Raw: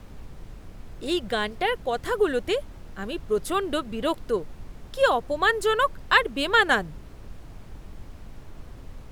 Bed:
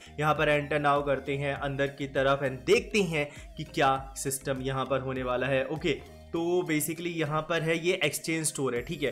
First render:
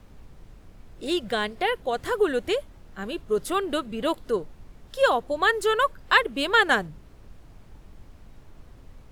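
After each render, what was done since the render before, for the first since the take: noise print and reduce 6 dB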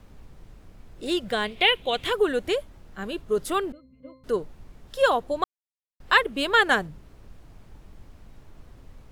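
1.47–2.13 s: high-order bell 2.9 kHz +13.5 dB 1 oct; 3.72–4.24 s: pitch-class resonator C, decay 0.46 s; 5.44–6.00 s: mute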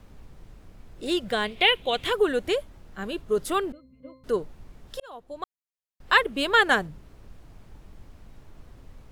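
5.00–6.21 s: fade in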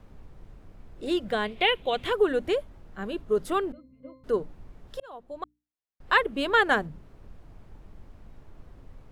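treble shelf 2.6 kHz -9 dB; hum notches 60/120/180/240/300 Hz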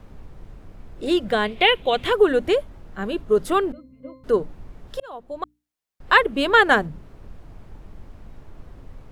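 trim +6.5 dB

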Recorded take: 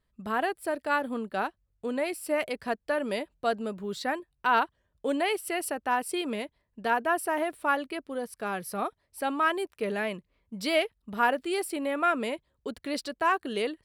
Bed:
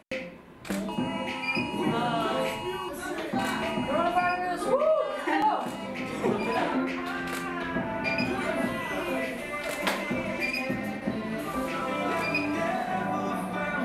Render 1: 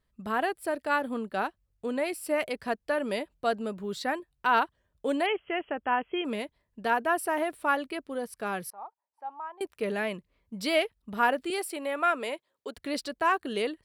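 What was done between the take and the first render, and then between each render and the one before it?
5.26–6.25 s: brick-wall FIR low-pass 3.4 kHz; 8.70–9.61 s: band-pass filter 880 Hz, Q 9.6; 11.50–12.77 s: high-pass 390 Hz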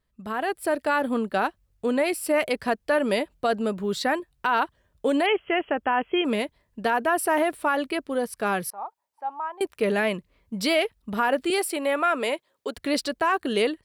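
peak limiter -21 dBFS, peak gain reduction 8.5 dB; level rider gain up to 7.5 dB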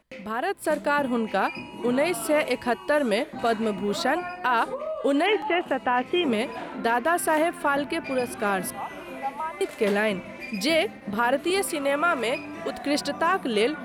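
add bed -8 dB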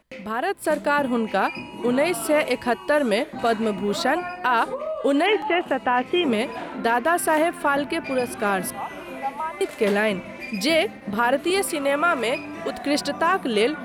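trim +2.5 dB

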